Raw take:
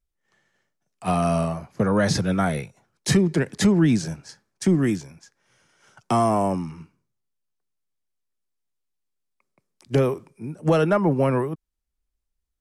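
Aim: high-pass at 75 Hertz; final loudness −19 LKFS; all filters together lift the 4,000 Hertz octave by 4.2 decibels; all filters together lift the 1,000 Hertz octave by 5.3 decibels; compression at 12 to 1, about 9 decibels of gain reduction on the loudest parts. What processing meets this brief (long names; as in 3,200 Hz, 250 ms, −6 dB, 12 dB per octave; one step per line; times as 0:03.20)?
high-pass filter 75 Hz
parametric band 1,000 Hz +7 dB
parametric band 4,000 Hz +5 dB
downward compressor 12 to 1, threshold −22 dBFS
level +9.5 dB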